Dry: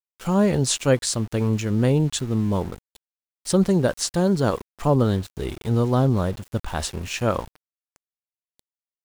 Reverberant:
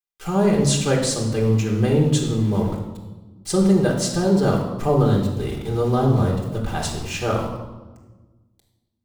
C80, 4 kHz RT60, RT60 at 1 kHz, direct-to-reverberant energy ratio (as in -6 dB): 7.0 dB, 0.90 s, 1.2 s, -1.0 dB